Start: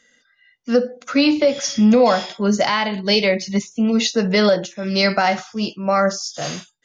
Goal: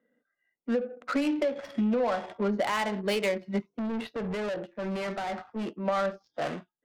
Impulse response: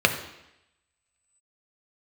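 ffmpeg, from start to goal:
-filter_complex "[0:a]acrossover=split=190 4300:gain=0.0891 1 0.0708[a][b][c];[a][b][c]amix=inputs=3:normalize=0,acompressor=threshold=-21dB:ratio=6,asettb=1/sr,asplit=3[d][e][f];[d]atrim=end=3.704[g];[e]atrim=start=3.7:end=5.73,asetpts=PTS-STARTPTS,afade=t=in:d=0.004:c=qsin,afade=t=out:st=2.026:d=0.004:c=qsin,asoftclip=type=hard:threshold=-27dB[h];[f]atrim=start=5.726[i];[g][h]acrossfade=d=0.004:c1=hsin:c2=qsin[j];[j][i]acrossfade=d=0.004:c1=qsin:c2=hsin,adynamicsmooth=sensitivity=3:basefreq=620,asoftclip=type=tanh:threshold=-15.5dB,volume=-2dB"

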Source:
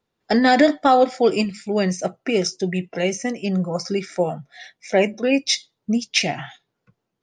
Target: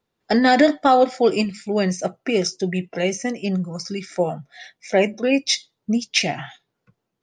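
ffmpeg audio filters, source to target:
-filter_complex "[0:a]asplit=3[a][b][c];[a]afade=t=out:st=3.55:d=0.02[d];[b]equalizer=f=680:w=0.74:g=-13.5,afade=t=in:st=3.55:d=0.02,afade=t=out:st=4.1:d=0.02[e];[c]afade=t=in:st=4.1:d=0.02[f];[d][e][f]amix=inputs=3:normalize=0"

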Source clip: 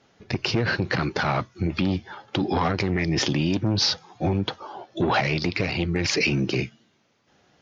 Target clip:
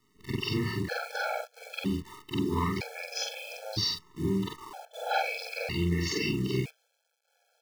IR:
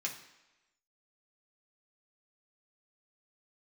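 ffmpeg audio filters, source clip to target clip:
-af "afftfilt=real='re':imag='-im':win_size=4096:overlap=0.75,acrusher=bits=8:dc=4:mix=0:aa=0.000001,afftfilt=real='re*gt(sin(2*PI*0.52*pts/sr)*(1-2*mod(floor(b*sr/1024/440),2)),0)':imag='im*gt(sin(2*PI*0.52*pts/sr)*(1-2*mod(floor(b*sr/1024/440),2)),0)':win_size=1024:overlap=0.75"

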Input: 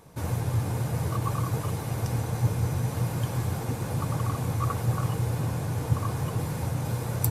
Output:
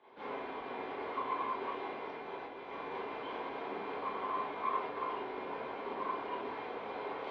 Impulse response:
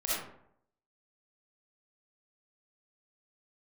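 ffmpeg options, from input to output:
-filter_complex "[0:a]asettb=1/sr,asplit=3[a][b][c];[a]atrim=end=1.814[d];[b]atrim=start=1.81:end=2.67,asetpts=PTS-STARTPTS,afade=t=in:d=0.004:c=qsin,afade=t=out:st=0.856:d=0.004:c=qsin,acompressor=threshold=-28dB:ratio=6[e];[c]atrim=start=2.666[f];[d][e]acrossfade=d=0.004:c1=hsin:c2=qsin[g];[g][f]acrossfade=d=0.004:c1=qsin:c2=hsin,asoftclip=type=tanh:threshold=-23dB[h];[1:a]atrim=start_sample=2205,asetrate=74970,aresample=44100[i];[h][i]afir=irnorm=-1:irlink=0,highpass=f=370:t=q:w=0.5412,highpass=f=370:t=q:w=1.307,lowpass=f=3.5k:t=q:w=0.5176,lowpass=f=3.5k:t=q:w=0.7071,lowpass=f=3.5k:t=q:w=1.932,afreqshift=-69,volume=-2.5dB"

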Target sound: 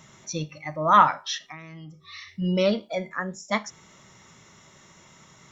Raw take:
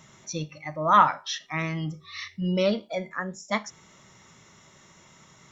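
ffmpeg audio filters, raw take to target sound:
-filter_complex "[0:a]asettb=1/sr,asplit=3[a][b][c];[a]atrim=end=1.404[d];[b]atrim=start=1.4:end=2.28,asetpts=PTS-STARTPTS,afade=t=in:d=0.004:c=qsin,afade=t=out:st=0.876:d=0.004:c=qsin,acompressor=threshold=-40dB:ratio=16[e];[c]atrim=start=2.276[f];[d][e]acrossfade=d=0.004:c1=hsin:c2=qsin[g];[g][f]acrossfade=d=0.004:c1=qsin:c2=hsin,volume=1.5dB"

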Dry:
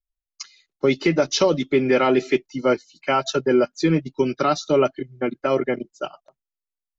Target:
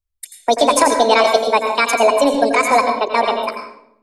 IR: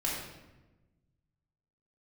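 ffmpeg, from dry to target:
-filter_complex "[0:a]asplit=2[a][b];[1:a]atrim=start_sample=2205,adelay=148[c];[b][c]afir=irnorm=-1:irlink=0,volume=-10.5dB[d];[a][d]amix=inputs=2:normalize=0,asetrate=76440,aresample=44100,volume=4.5dB"

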